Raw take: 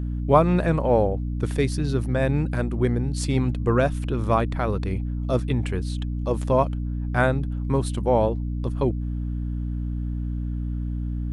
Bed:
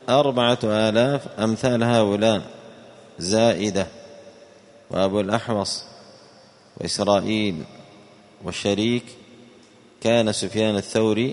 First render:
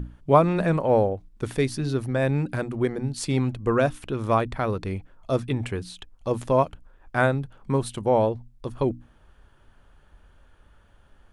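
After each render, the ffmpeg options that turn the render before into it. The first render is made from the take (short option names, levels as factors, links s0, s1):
-af "bandreject=f=60:t=h:w=6,bandreject=f=120:t=h:w=6,bandreject=f=180:t=h:w=6,bandreject=f=240:t=h:w=6,bandreject=f=300:t=h:w=6"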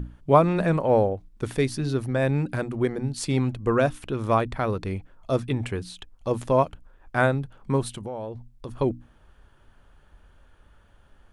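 -filter_complex "[0:a]asettb=1/sr,asplit=3[s0][s1][s2];[s0]atrim=end=7.964[s3];[s1]atrim=start=7.96:end=8.69,asetpts=PTS-STARTPTS,afade=t=in:d=0.004:c=qsin,afade=t=out:st=0.726:d=0.004:c=qsin,acompressor=threshold=0.0282:ratio=5:attack=3.2:release=140:knee=1:detection=peak[s4];[s2]atrim=start=8.686[s5];[s3][s4]acrossfade=d=0.004:c1=hsin:c2=qsin[s6];[s6][s5]acrossfade=d=0.004:c1=qsin:c2=hsin"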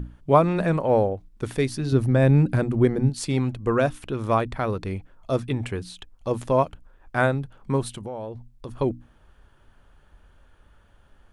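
-filter_complex "[0:a]asettb=1/sr,asplit=3[s0][s1][s2];[s0]atrim=end=1.924[s3];[s1]atrim=start=1.92:end=3.1,asetpts=PTS-STARTPTS,afade=t=in:d=0.004:c=qsin,afade=t=out:st=1.176:d=0.004:c=qsin,lowshelf=f=380:g=9[s4];[s2]atrim=start=3.096[s5];[s3][s4]acrossfade=d=0.004:c1=hsin:c2=qsin[s6];[s6][s5]acrossfade=d=0.004:c1=qsin:c2=hsin"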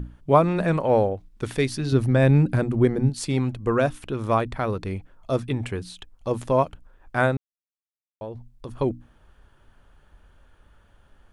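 -filter_complex "[0:a]asettb=1/sr,asplit=3[s0][s1][s2];[s0]atrim=end=0.684[s3];[s1]atrim=start=0.68:end=2.38,asetpts=PTS-STARTPTS,afade=t=in:d=0.004:c=qsin,afade=t=out:st=1.696:d=0.004:c=qsin,equalizer=f=3200:t=o:w=2.5:g=3.5[s4];[s2]atrim=start=2.376[s5];[s3][s4]acrossfade=d=0.004:c1=hsin:c2=qsin[s6];[s6][s5]acrossfade=d=0.004:c1=qsin:c2=hsin,asplit=3[s7][s8][s9];[s7]atrim=end=7.37,asetpts=PTS-STARTPTS,afade=t=out:st=7.366:d=0.004:c=hsin[s10];[s8]atrim=start=7.37:end=8.21,asetpts=PTS-STARTPTS,volume=0[s11];[s9]atrim=start=8.21,asetpts=PTS-STARTPTS,afade=t=in:d=0.004:c=hsin[s12];[s10][s11][s12]concat=n=3:v=0:a=1"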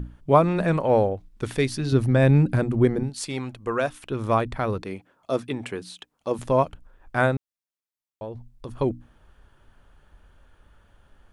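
-filter_complex "[0:a]asettb=1/sr,asplit=3[s0][s1][s2];[s0]atrim=end=3.034[s3];[s1]atrim=start=3.03:end=4.11,asetpts=PTS-STARTPTS,afade=t=in:d=0.004:c=qsin,afade=t=out:st=1.076:d=0.004:c=qsin,lowshelf=f=330:g=-11.5[s4];[s2]atrim=start=4.106[s5];[s3][s4]acrossfade=d=0.004:c1=hsin:c2=qsin[s6];[s6][s5]acrossfade=d=0.004:c1=qsin:c2=hsin,asettb=1/sr,asplit=3[s7][s8][s9];[s7]atrim=end=4.824[s10];[s8]atrim=start=4.82:end=6.39,asetpts=PTS-STARTPTS,afade=t=in:d=0.004:c=qsin,afade=t=out:st=1.566:d=0.004:c=qsin,highpass=210[s11];[s9]atrim=start=6.386[s12];[s10][s11]acrossfade=d=0.004:c1=hsin:c2=qsin[s13];[s13][s12]acrossfade=d=0.004:c1=qsin:c2=hsin"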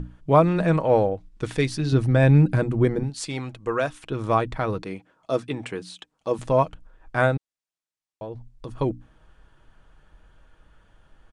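-af "lowpass=f=9400:w=0.5412,lowpass=f=9400:w=1.3066,aecho=1:1:6.3:0.32"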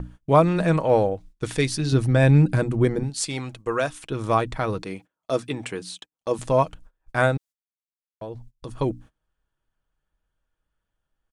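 -af "agate=range=0.0631:threshold=0.00708:ratio=16:detection=peak,highshelf=f=5200:g=10"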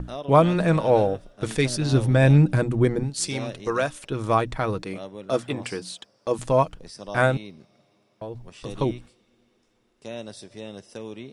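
-filter_complex "[1:a]volume=0.133[s0];[0:a][s0]amix=inputs=2:normalize=0"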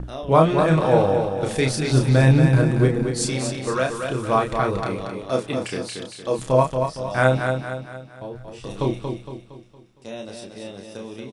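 -filter_complex "[0:a]asplit=2[s0][s1];[s1]adelay=31,volume=0.631[s2];[s0][s2]amix=inputs=2:normalize=0,aecho=1:1:231|462|693|924|1155:0.501|0.226|0.101|0.0457|0.0206"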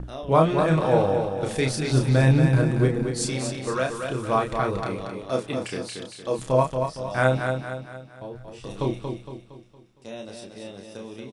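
-af "volume=0.708"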